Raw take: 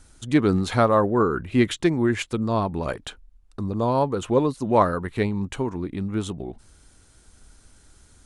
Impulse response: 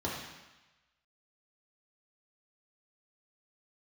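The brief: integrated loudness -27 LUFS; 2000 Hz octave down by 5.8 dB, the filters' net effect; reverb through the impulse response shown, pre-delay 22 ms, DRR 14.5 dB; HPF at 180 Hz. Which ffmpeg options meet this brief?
-filter_complex "[0:a]highpass=180,equalizer=f=2k:t=o:g=-7.5,asplit=2[a][b];[1:a]atrim=start_sample=2205,adelay=22[c];[b][c]afir=irnorm=-1:irlink=0,volume=-20.5dB[d];[a][d]amix=inputs=2:normalize=0,volume=-2.5dB"

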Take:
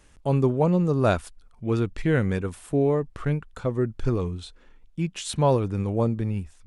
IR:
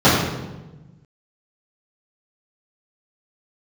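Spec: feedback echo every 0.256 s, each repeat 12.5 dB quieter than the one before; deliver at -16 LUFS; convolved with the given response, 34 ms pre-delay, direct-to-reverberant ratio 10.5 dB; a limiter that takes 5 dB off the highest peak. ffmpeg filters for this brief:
-filter_complex "[0:a]alimiter=limit=-15dB:level=0:latency=1,aecho=1:1:256|512|768:0.237|0.0569|0.0137,asplit=2[a][b];[1:a]atrim=start_sample=2205,adelay=34[c];[b][c]afir=irnorm=-1:irlink=0,volume=-37.5dB[d];[a][d]amix=inputs=2:normalize=0,volume=8.5dB"

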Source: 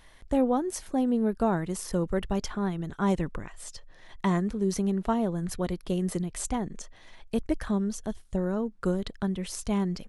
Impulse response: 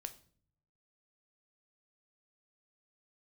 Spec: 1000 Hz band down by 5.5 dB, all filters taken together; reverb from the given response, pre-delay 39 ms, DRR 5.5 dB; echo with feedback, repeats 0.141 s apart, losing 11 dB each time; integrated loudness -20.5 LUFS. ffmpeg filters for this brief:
-filter_complex "[0:a]equalizer=f=1k:t=o:g=-7.5,aecho=1:1:141|282|423:0.282|0.0789|0.0221,asplit=2[a][b];[1:a]atrim=start_sample=2205,adelay=39[c];[b][c]afir=irnorm=-1:irlink=0,volume=-2dB[d];[a][d]amix=inputs=2:normalize=0,volume=8.5dB"

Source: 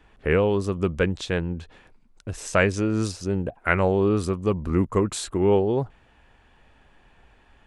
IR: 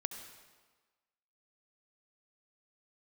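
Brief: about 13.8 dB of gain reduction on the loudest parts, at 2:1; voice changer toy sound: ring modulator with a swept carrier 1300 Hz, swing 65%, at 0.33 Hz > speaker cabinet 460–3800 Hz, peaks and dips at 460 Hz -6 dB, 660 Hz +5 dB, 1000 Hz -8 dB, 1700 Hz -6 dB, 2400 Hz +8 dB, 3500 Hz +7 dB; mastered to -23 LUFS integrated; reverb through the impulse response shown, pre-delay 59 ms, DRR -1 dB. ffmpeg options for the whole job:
-filter_complex "[0:a]acompressor=threshold=-42dB:ratio=2,asplit=2[a][b];[1:a]atrim=start_sample=2205,adelay=59[c];[b][c]afir=irnorm=-1:irlink=0,volume=1dB[d];[a][d]amix=inputs=2:normalize=0,aeval=exprs='val(0)*sin(2*PI*1300*n/s+1300*0.65/0.33*sin(2*PI*0.33*n/s))':c=same,highpass=460,equalizer=f=460:t=q:w=4:g=-6,equalizer=f=660:t=q:w=4:g=5,equalizer=f=1k:t=q:w=4:g=-8,equalizer=f=1.7k:t=q:w=4:g=-6,equalizer=f=2.4k:t=q:w=4:g=8,equalizer=f=3.5k:t=q:w=4:g=7,lowpass=f=3.8k:w=0.5412,lowpass=f=3.8k:w=1.3066,volume=9.5dB"

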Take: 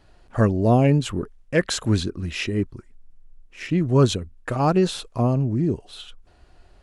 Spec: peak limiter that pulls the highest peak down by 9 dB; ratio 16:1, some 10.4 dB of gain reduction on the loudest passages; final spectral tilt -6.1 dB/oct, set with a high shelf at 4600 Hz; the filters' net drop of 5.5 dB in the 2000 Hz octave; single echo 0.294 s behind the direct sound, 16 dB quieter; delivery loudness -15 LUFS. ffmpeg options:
-af "equalizer=f=2k:t=o:g=-5.5,highshelf=f=4.6k:g=-7.5,acompressor=threshold=-22dB:ratio=16,alimiter=limit=-22.5dB:level=0:latency=1,aecho=1:1:294:0.158,volume=18dB"

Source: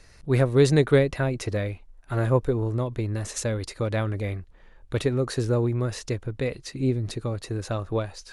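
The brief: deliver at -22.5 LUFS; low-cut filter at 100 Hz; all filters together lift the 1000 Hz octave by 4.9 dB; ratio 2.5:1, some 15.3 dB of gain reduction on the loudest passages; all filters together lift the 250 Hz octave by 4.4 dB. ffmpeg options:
-af "highpass=100,equalizer=f=250:t=o:g=5.5,equalizer=f=1k:t=o:g=6,acompressor=threshold=-35dB:ratio=2.5,volume=13dB"

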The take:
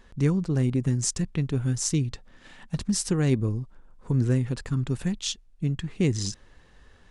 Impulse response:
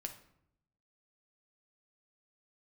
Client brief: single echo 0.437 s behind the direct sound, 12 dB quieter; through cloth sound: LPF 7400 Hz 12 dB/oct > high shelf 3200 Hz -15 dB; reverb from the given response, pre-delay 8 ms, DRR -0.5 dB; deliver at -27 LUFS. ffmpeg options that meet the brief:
-filter_complex "[0:a]aecho=1:1:437:0.251,asplit=2[a][b];[1:a]atrim=start_sample=2205,adelay=8[c];[b][c]afir=irnorm=-1:irlink=0,volume=3dB[d];[a][d]amix=inputs=2:normalize=0,lowpass=7.4k,highshelf=f=3.2k:g=-15,volume=-5dB"

